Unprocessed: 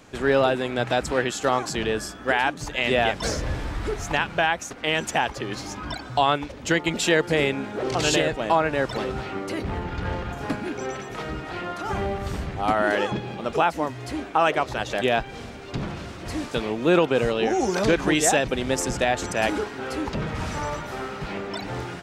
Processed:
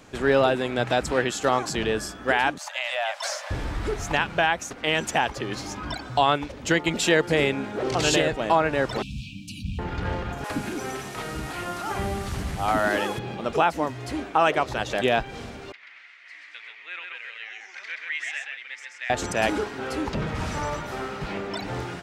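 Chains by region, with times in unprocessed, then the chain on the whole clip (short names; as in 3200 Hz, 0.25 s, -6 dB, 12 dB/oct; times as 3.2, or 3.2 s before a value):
2.58–3.51 steep high-pass 560 Hz 96 dB/oct + compressor 3:1, threshold -24 dBFS
9.02–9.79 brick-wall FIR band-stop 290–2300 Hz + bell 270 Hz -9.5 dB 0.28 oct
10.44–13.19 delta modulation 64 kbps, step -34 dBFS + bands offset in time highs, lows 60 ms, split 450 Hz
15.72–19.1 ladder band-pass 2200 Hz, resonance 70% + echo 0.131 s -3.5 dB
whole clip: dry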